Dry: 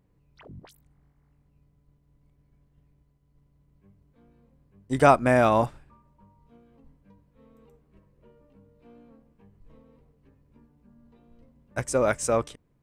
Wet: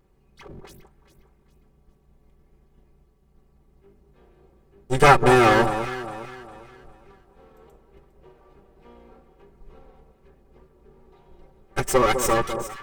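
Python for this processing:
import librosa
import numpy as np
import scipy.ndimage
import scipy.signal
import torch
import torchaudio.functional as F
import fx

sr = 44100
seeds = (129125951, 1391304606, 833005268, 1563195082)

y = fx.lower_of_two(x, sr, delay_ms=2.4)
y = y + 0.65 * np.pad(y, (int(5.2 * sr / 1000.0), 0))[:len(y)]
y = fx.vibrato(y, sr, rate_hz=3.4, depth_cents=20.0)
y = fx.echo_alternate(y, sr, ms=203, hz=1200.0, feedback_pct=58, wet_db=-8.0)
y = y * 10.0 ** (5.5 / 20.0)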